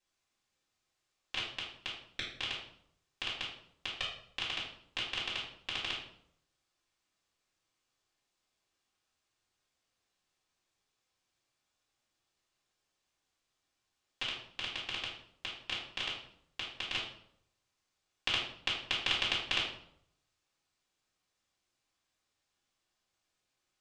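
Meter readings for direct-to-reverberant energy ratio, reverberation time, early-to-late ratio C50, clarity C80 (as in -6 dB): -9.0 dB, 0.70 s, 4.0 dB, 8.0 dB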